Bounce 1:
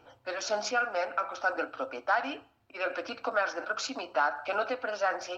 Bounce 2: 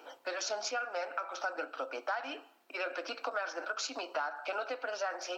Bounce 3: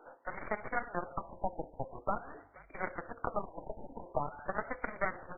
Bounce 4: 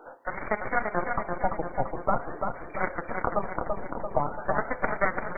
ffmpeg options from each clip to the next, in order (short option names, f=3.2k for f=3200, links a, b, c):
-af "highpass=f=300:w=0.5412,highpass=f=300:w=1.3066,highshelf=f=5.8k:g=7,acompressor=threshold=-42dB:ratio=3,volume=5dB"
-filter_complex "[0:a]aeval=exprs='0.0891*(cos(1*acos(clip(val(0)/0.0891,-1,1)))-cos(1*PI/2))+0.0178*(cos(4*acos(clip(val(0)/0.0891,-1,1)))-cos(4*PI/2))+0.02*(cos(7*acos(clip(val(0)/0.0891,-1,1)))-cos(7*PI/2))':c=same,asplit=4[a][b][c][d];[b]adelay=473,afreqshift=-49,volume=-24dB[e];[c]adelay=946,afreqshift=-98,volume=-30.9dB[f];[d]adelay=1419,afreqshift=-147,volume=-37.9dB[g];[a][e][f][g]amix=inputs=4:normalize=0,afftfilt=real='re*lt(b*sr/1024,940*pow(2400/940,0.5+0.5*sin(2*PI*0.46*pts/sr)))':imag='im*lt(b*sr/1024,940*pow(2400/940,0.5+0.5*sin(2*PI*0.46*pts/sr)))':win_size=1024:overlap=0.75,volume=3dB"
-af "aecho=1:1:340|680|1020|1360|1700|2040|2380:0.562|0.315|0.176|0.0988|0.0553|0.031|0.0173,volume=8dB"